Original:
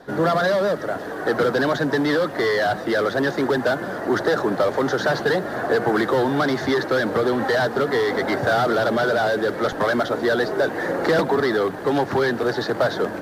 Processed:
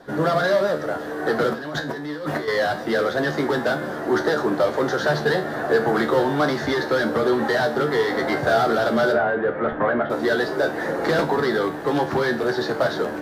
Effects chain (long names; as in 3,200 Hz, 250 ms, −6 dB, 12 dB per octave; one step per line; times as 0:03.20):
0:01.52–0:02.48: compressor whose output falls as the input rises −29 dBFS, ratio −1
0:09.12–0:10.10: low-pass filter 2,300 Hz 24 dB per octave
tuned comb filter 75 Hz, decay 0.33 s, harmonics all, mix 80%
level +6.5 dB